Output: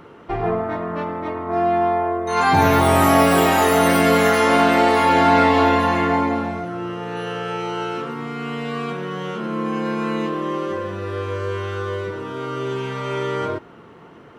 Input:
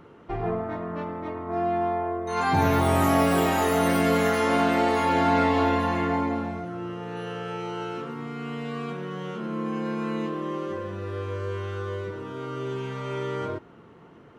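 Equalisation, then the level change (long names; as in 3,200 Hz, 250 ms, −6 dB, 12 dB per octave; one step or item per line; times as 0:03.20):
low-shelf EQ 360 Hz −5 dB
notch filter 6,700 Hz, Q 24
+8.5 dB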